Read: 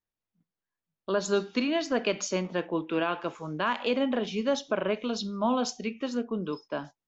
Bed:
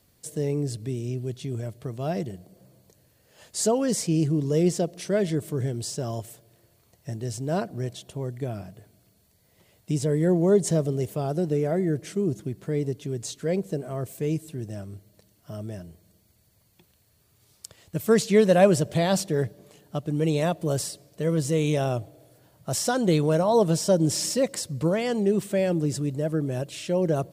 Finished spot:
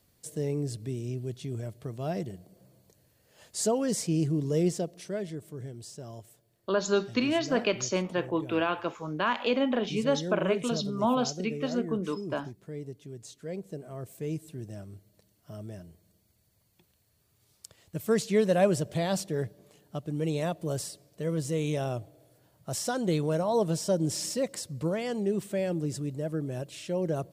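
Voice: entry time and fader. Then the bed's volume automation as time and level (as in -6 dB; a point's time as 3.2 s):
5.60 s, +0.5 dB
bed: 4.62 s -4 dB
5.39 s -12.5 dB
13.31 s -12.5 dB
14.48 s -6 dB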